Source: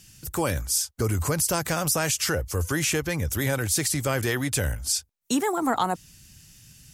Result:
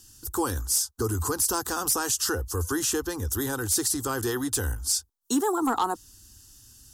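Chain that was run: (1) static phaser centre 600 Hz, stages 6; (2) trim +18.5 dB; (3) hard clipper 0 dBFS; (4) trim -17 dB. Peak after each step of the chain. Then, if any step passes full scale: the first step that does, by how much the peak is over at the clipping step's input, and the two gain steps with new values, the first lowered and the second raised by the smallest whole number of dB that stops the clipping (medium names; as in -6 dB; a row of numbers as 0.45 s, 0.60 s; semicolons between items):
-12.0 dBFS, +6.5 dBFS, 0.0 dBFS, -17.0 dBFS; step 2, 6.5 dB; step 2 +11.5 dB, step 4 -10 dB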